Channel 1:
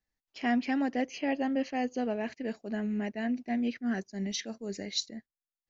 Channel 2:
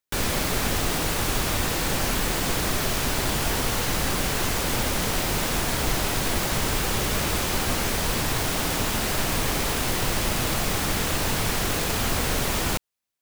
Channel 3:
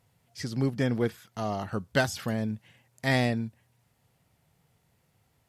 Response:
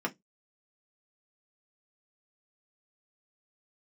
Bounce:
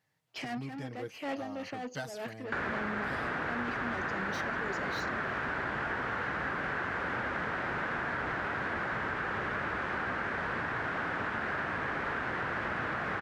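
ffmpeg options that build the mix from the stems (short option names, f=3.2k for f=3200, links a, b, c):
-filter_complex "[0:a]asplit=2[a][b];[b]highpass=f=720:p=1,volume=27dB,asoftclip=type=tanh:threshold=-18dB[c];[a][c]amix=inputs=2:normalize=0,lowpass=f=1.6k:p=1,volume=-6dB,volume=-5.5dB[d];[1:a]highpass=f=99:p=1,lowpass=f=1.6k:t=q:w=3.4,adelay=2400,volume=-3.5dB[e];[2:a]aecho=1:1:6.4:0.63,volume=-15dB,asplit=2[f][g];[g]apad=whole_len=250971[h];[d][h]sidechaincompress=threshold=-50dB:ratio=12:attack=16:release=251[i];[i][e][f]amix=inputs=3:normalize=0,highpass=52,lowshelf=f=200:g=-3,acompressor=threshold=-31dB:ratio=6"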